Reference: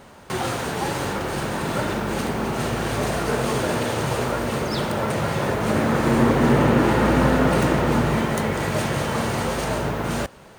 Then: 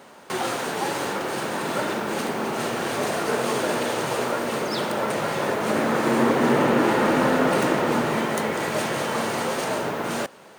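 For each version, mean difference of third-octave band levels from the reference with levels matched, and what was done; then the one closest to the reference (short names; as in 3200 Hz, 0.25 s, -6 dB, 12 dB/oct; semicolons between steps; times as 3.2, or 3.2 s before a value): 2.5 dB: HPF 240 Hz 12 dB/oct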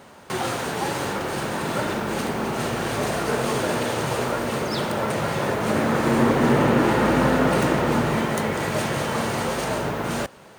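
1.0 dB: HPF 140 Hz 6 dB/oct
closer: second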